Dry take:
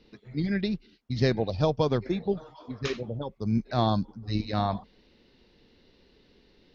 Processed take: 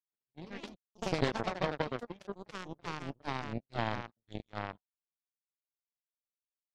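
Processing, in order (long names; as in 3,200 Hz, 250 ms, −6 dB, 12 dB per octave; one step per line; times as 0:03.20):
hearing-aid frequency compression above 2,600 Hz 1.5 to 1
power curve on the samples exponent 3
delay with pitch and tempo change per echo 99 ms, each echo +3 semitones, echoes 3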